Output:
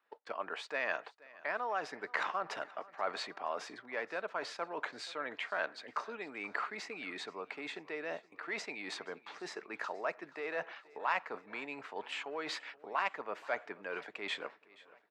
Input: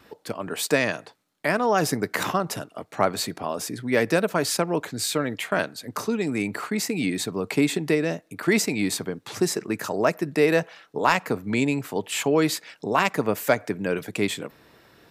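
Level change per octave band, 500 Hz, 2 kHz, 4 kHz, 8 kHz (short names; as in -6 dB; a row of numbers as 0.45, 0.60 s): -16.5, -10.0, -13.5, -24.5 dB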